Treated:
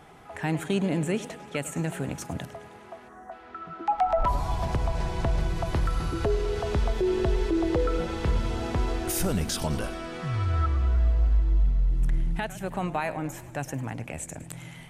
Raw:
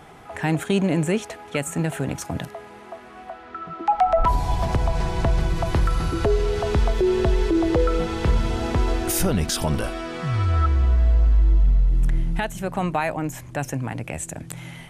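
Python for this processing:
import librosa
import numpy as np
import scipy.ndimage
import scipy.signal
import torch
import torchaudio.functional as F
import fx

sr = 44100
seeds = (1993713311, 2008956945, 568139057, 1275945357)

y = fx.spec_box(x, sr, start_s=3.08, length_s=0.24, low_hz=2000.0, high_hz=5500.0, gain_db=-26)
y = fx.echo_warbled(y, sr, ms=104, feedback_pct=65, rate_hz=2.8, cents=209, wet_db=-16.0)
y = y * 10.0 ** (-5.5 / 20.0)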